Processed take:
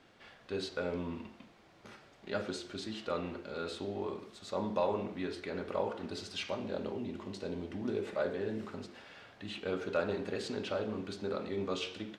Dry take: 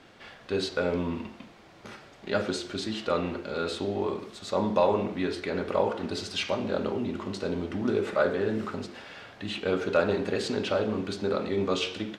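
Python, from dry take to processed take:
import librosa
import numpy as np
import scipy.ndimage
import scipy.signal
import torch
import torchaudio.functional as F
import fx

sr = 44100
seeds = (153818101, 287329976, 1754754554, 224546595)

y = fx.peak_eq(x, sr, hz=1300.0, db=-6.5, octaves=0.37, at=(6.67, 8.73))
y = y * 10.0 ** (-8.5 / 20.0)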